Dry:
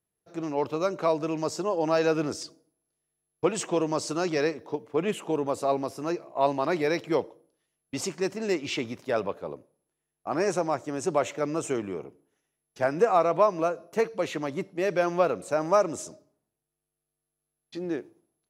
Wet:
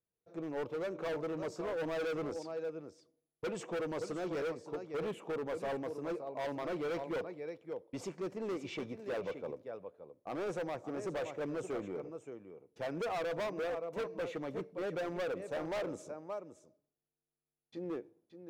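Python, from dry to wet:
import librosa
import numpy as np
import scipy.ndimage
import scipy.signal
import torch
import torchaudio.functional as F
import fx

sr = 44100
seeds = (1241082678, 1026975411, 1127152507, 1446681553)

p1 = fx.high_shelf(x, sr, hz=2200.0, db=-11.0)
p2 = fx.small_body(p1, sr, hz=(490.0, 2300.0, 3500.0), ring_ms=45, db=8)
p3 = p2 + fx.echo_single(p2, sr, ms=572, db=-11.5, dry=0)
p4 = np.clip(p3, -10.0 ** (-26.0 / 20.0), 10.0 ** (-26.0 / 20.0))
y = p4 * 10.0 ** (-8.0 / 20.0)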